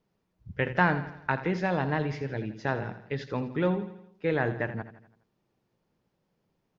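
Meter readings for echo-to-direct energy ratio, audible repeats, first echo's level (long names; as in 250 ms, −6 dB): −11.5 dB, 4, −13.0 dB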